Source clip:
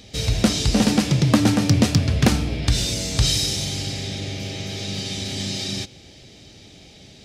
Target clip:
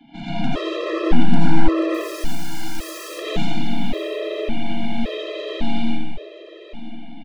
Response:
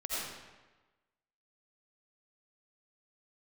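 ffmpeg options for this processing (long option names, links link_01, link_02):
-filter_complex "[0:a]acrossover=split=920[link_01][link_02];[link_01]acontrast=76[link_03];[link_03][link_02]amix=inputs=2:normalize=0,highpass=frequency=160:width_type=q:width=0.5412,highpass=frequency=160:width_type=q:width=1.307,lowpass=frequency=3200:width_type=q:width=0.5176,lowpass=frequency=3200:width_type=q:width=0.7071,lowpass=frequency=3200:width_type=q:width=1.932,afreqshift=50,asplit=2[link_04][link_05];[link_05]aeval=exprs='1.19*sin(PI/2*2.24*val(0)/1.19)':channel_layout=same,volume=-11dB[link_06];[link_04][link_06]amix=inputs=2:normalize=0,afreqshift=-16,aeval=exprs='(tanh(6.31*val(0)+0.55)-tanh(0.55))/6.31':channel_layout=same,asettb=1/sr,asplit=3[link_07][link_08][link_09];[link_07]atrim=end=1.944[link_10];[link_08]atrim=start=1.94:end=3.09,asetpts=PTS-STARTPTS,afade=type=in:duration=0.004:curve=qsin,afade=type=out:start_time=1.146:duration=0.004:curve=qsin,aeval=exprs='(mod(25.1*val(0)+1,2)-1)/25.1':channel_layout=same[link_11];[link_09]atrim=start=3.086[link_12];[link_10][link_11]acrossfade=duration=0.004:curve1=hsin:curve2=qsin[link_13];[link_13][link_12]acrossfade=duration=0.004:curve1=qsin:curve2=hsin,aecho=1:1:977|1954|2931:0.15|0.0509|0.0173[link_14];[1:a]atrim=start_sample=2205[link_15];[link_14][link_15]afir=irnorm=-1:irlink=0,afftfilt=real='re*gt(sin(2*PI*0.89*pts/sr)*(1-2*mod(floor(b*sr/1024/340),2)),0)':imag='im*gt(sin(2*PI*0.89*pts/sr)*(1-2*mod(floor(b*sr/1024/340),2)),0)':win_size=1024:overlap=0.75,volume=-3dB"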